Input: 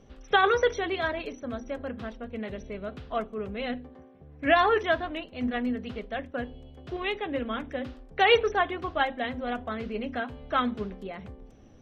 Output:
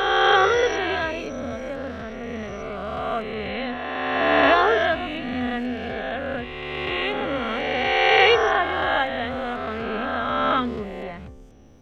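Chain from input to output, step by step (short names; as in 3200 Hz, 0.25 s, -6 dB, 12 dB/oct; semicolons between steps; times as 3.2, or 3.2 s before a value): spectral swells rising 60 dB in 2.52 s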